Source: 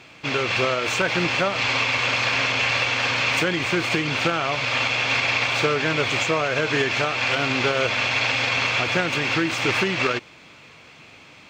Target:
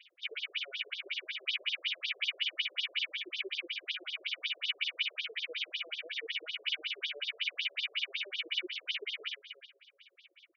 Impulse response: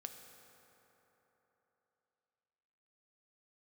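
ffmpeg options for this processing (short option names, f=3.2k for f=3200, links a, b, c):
-filter_complex "[0:a]highshelf=f=3.6k:g=11,asplit=2[a][b];[1:a]atrim=start_sample=2205,adelay=104[c];[b][c]afir=irnorm=-1:irlink=0,volume=-12dB[d];[a][d]amix=inputs=2:normalize=0,asetrate=48000,aresample=44100,asplit=3[e][f][g];[e]bandpass=f=270:t=q:w=8,volume=0dB[h];[f]bandpass=f=2.29k:t=q:w=8,volume=-6dB[i];[g]bandpass=f=3.01k:t=q:w=8,volume=-9dB[j];[h][i][j]amix=inputs=3:normalize=0,aecho=1:1:306:0.211,afftfilt=real='re*between(b*sr/1024,480*pow(4700/480,0.5+0.5*sin(2*PI*5.4*pts/sr))/1.41,480*pow(4700/480,0.5+0.5*sin(2*PI*5.4*pts/sr))*1.41)':imag='im*between(b*sr/1024,480*pow(4700/480,0.5+0.5*sin(2*PI*5.4*pts/sr))/1.41,480*pow(4700/480,0.5+0.5*sin(2*PI*5.4*pts/sr))*1.41)':win_size=1024:overlap=0.75,volume=1.5dB"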